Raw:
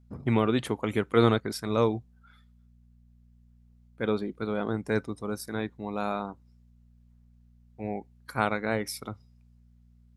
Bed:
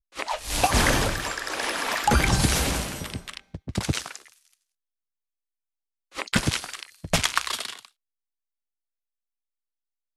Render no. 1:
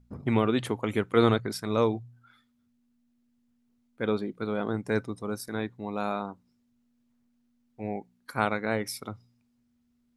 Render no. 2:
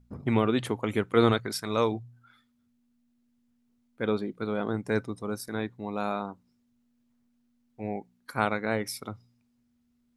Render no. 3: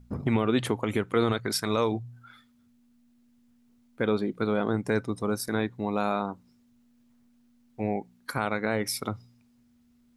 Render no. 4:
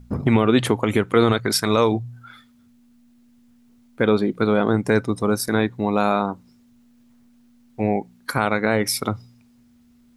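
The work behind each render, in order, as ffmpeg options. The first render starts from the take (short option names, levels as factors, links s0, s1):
-af "bandreject=f=60:t=h:w=4,bandreject=f=120:t=h:w=4,bandreject=f=180:t=h:w=4"
-filter_complex "[0:a]asettb=1/sr,asplit=3[s0][s1][s2];[s0]atrim=end=1.324[s3];[s1]atrim=start=1.32:end=1.92,asetpts=PTS-STARTPTS,afade=t=in:d=0.004:c=qsin,afade=t=out:st=0.596:d=0.004:c=qsin,tiltshelf=f=720:g=-3.5[s4];[s2]atrim=start=1.916[s5];[s3][s4]acrossfade=d=0.004:c1=hsin:c2=qsin[s6];[s6][s5]acrossfade=d=0.004:c1=qsin:c2=hsin"
-filter_complex "[0:a]asplit=2[s0][s1];[s1]acompressor=threshold=0.02:ratio=6,volume=1.41[s2];[s0][s2]amix=inputs=2:normalize=0,alimiter=limit=0.211:level=0:latency=1:release=104"
-af "volume=2.51"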